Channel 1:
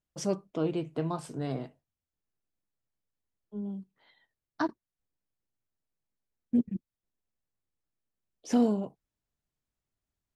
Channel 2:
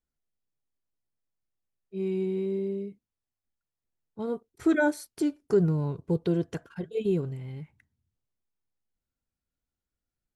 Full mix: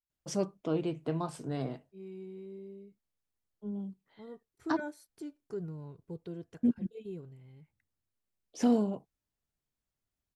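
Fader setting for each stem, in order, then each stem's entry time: −1.5, −16.0 decibels; 0.10, 0.00 seconds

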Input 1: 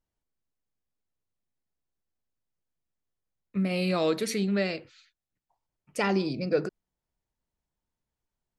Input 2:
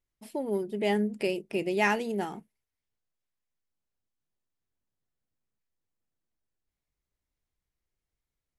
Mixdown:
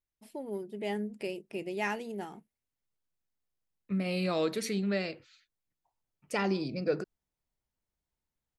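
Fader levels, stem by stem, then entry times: −4.0, −7.5 decibels; 0.35, 0.00 seconds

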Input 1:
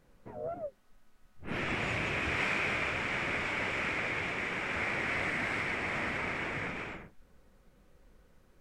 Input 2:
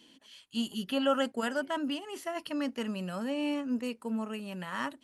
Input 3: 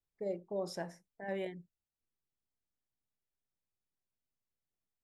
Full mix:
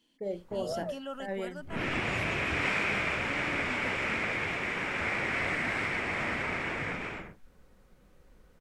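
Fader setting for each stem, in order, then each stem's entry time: +2.0, −12.5, +2.5 decibels; 0.25, 0.00, 0.00 seconds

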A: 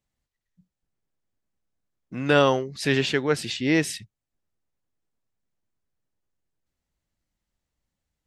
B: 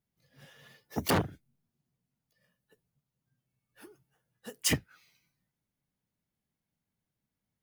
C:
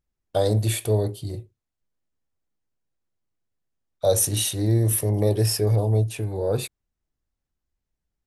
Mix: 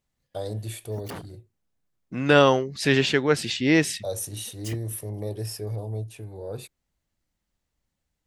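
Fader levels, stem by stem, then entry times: +2.0, −11.0, −11.0 decibels; 0.00, 0.00, 0.00 seconds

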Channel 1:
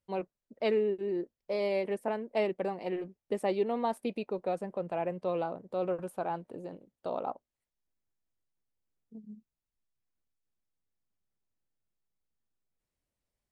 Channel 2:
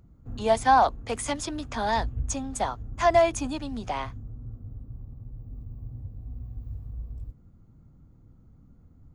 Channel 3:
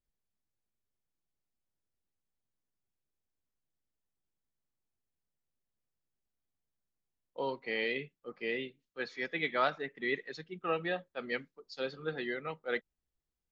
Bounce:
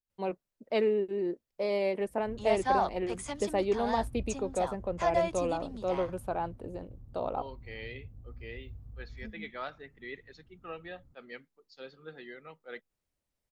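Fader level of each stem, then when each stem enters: +1.0, −9.0, −9.5 decibels; 0.10, 2.00, 0.00 seconds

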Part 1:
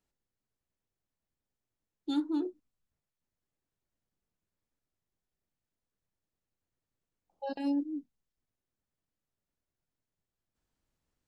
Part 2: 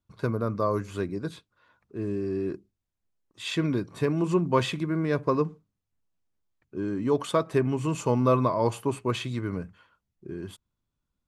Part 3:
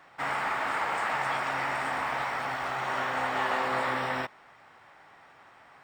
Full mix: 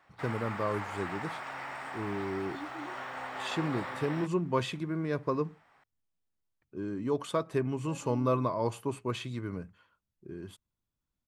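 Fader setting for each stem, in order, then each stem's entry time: −13.0, −6.0, −10.0 decibels; 0.45, 0.00, 0.00 seconds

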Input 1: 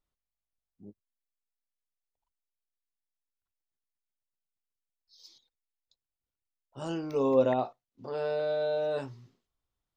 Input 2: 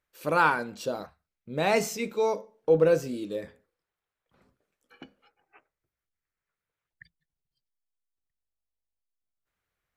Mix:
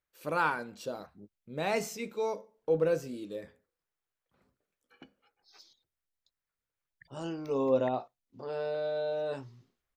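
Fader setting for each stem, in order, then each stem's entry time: −3.0, −6.5 decibels; 0.35, 0.00 seconds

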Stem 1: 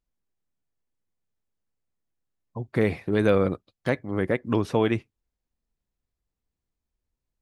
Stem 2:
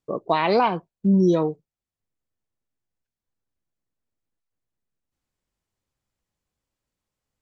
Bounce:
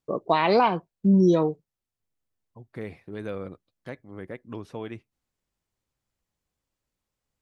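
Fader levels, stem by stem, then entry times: −13.5, −0.5 decibels; 0.00, 0.00 seconds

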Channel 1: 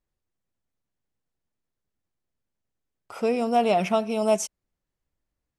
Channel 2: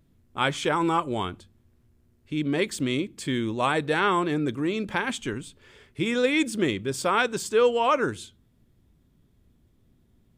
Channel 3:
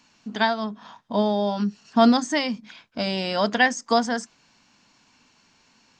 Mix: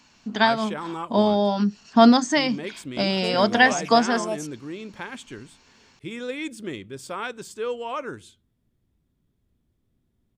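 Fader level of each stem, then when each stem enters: −8.0, −8.5, +2.5 decibels; 0.00, 0.05, 0.00 seconds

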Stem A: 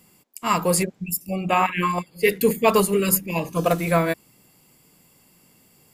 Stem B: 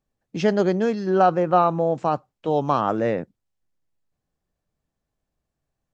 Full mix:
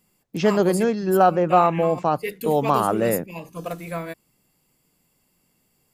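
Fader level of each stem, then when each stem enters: −10.5, +1.0 decibels; 0.00, 0.00 seconds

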